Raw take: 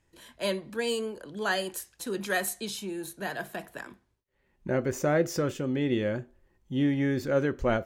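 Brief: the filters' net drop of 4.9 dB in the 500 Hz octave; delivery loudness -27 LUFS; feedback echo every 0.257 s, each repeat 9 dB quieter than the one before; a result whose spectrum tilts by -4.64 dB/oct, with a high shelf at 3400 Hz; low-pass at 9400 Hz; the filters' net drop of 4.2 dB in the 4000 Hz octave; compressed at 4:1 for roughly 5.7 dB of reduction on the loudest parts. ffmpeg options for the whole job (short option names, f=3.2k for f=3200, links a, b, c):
-af "lowpass=9.4k,equalizer=f=500:t=o:g=-6,highshelf=f=3.4k:g=4,equalizer=f=4k:t=o:g=-8.5,acompressor=threshold=-30dB:ratio=4,aecho=1:1:257|514|771|1028:0.355|0.124|0.0435|0.0152,volume=8.5dB"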